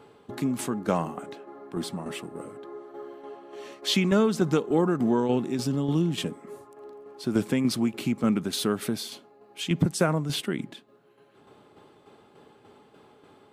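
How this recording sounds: tremolo saw down 3.4 Hz, depth 50%

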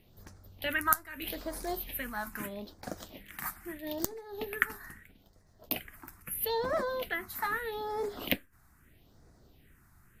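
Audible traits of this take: phasing stages 4, 0.78 Hz, lowest notch 490–2900 Hz

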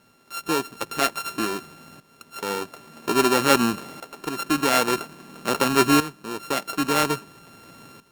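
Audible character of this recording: a buzz of ramps at a fixed pitch in blocks of 32 samples; tremolo saw up 0.5 Hz, depth 80%; a quantiser's noise floor 12-bit, dither none; Opus

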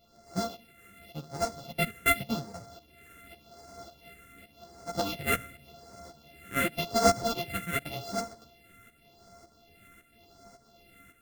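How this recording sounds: a buzz of ramps at a fixed pitch in blocks of 64 samples; phasing stages 4, 0.88 Hz, lowest notch 800–2900 Hz; tremolo saw up 1.8 Hz, depth 70%; a shimmering, thickened sound

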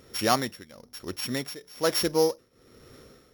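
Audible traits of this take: a buzz of ramps at a fixed pitch in blocks of 8 samples; tremolo triangle 1.1 Hz, depth 90%

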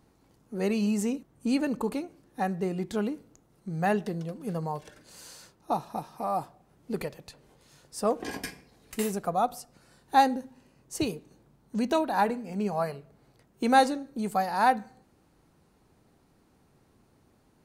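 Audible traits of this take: noise floor -65 dBFS; spectral tilt -5.0 dB/oct

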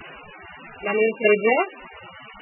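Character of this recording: a buzz of ramps at a fixed pitch in blocks of 16 samples; tremolo saw down 1.6 Hz, depth 75%; a quantiser's noise floor 6-bit, dither triangular; MP3

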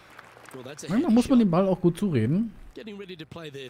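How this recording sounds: noise floor -52 dBFS; spectral tilt -7.5 dB/oct

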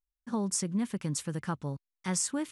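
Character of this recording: noise floor -89 dBFS; spectral tilt -4.5 dB/oct

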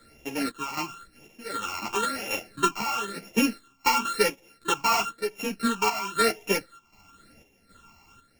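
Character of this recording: a buzz of ramps at a fixed pitch in blocks of 32 samples; phasing stages 8, 0.97 Hz, lowest notch 480–1300 Hz; chopped level 1.3 Hz, depth 60%, duty 65%; a shimmering, thickened sound

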